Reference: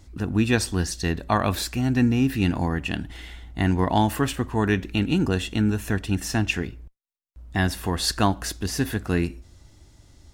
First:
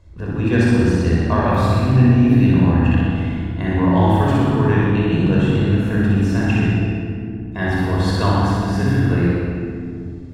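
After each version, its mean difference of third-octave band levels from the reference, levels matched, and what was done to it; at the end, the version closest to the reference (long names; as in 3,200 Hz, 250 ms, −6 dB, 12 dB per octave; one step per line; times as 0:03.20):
10.0 dB: low-pass filter 1,500 Hz 6 dB per octave
low-shelf EQ 160 Hz −3 dB
on a send: flutter between parallel walls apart 10.6 metres, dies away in 1.1 s
on the sum: rectangular room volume 4,000 cubic metres, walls mixed, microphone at 5.3 metres
level −2 dB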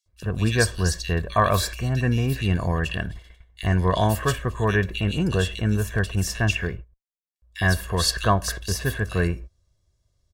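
7.0 dB: noise gate −36 dBFS, range −20 dB
comb filter 1.8 ms, depth 73%
dynamic equaliser 1,500 Hz, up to +4 dB, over −38 dBFS, Q 3.1
multiband delay without the direct sound highs, lows 60 ms, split 2,500 Hz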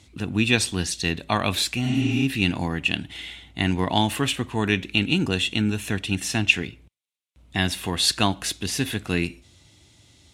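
3.0 dB: high-shelf EQ 5,800 Hz +7 dB
healed spectral selection 0:01.88–0:02.20, 210–8,700 Hz both
Chebyshev band-pass filter 110–9,800 Hz, order 2
flat-topped bell 2,900 Hz +9 dB 1.1 octaves
level −1 dB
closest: third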